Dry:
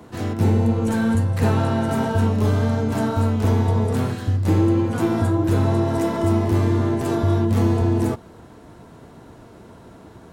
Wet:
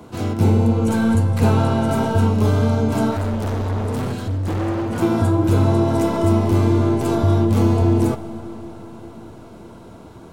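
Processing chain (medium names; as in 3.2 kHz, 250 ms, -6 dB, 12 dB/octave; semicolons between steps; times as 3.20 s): band-stop 1.8 kHz, Q 5.4; 3.11–5.02 s: overload inside the chain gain 23 dB; reverberation RT60 5.3 s, pre-delay 40 ms, DRR 13.5 dB; trim +2.5 dB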